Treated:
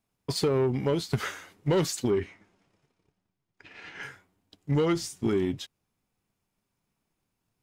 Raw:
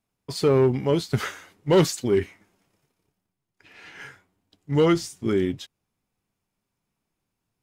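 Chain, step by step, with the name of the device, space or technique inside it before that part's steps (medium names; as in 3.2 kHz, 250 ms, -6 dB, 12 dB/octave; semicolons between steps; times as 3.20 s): drum-bus smash (transient shaper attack +5 dB, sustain 0 dB; compression, threshold -20 dBFS, peak gain reduction 8.5 dB; saturation -17 dBFS, distortion -18 dB); 2.10–4.03 s: distance through air 67 m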